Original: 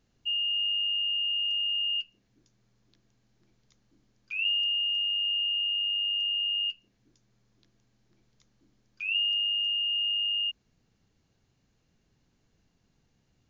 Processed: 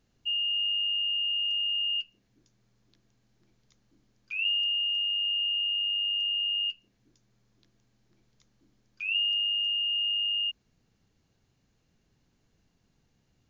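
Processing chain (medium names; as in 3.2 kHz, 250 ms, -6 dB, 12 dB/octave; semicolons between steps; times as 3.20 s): 4.35–5.41 s: tone controls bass -11 dB, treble -1 dB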